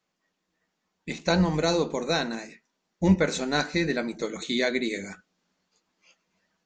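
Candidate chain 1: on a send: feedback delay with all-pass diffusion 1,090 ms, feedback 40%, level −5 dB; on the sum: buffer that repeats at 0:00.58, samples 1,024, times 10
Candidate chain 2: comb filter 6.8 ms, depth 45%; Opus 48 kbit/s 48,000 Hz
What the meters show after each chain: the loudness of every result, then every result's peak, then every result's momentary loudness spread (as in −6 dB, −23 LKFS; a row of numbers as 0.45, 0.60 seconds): −26.5, −26.0 LKFS; −9.0, −8.5 dBFS; 11, 14 LU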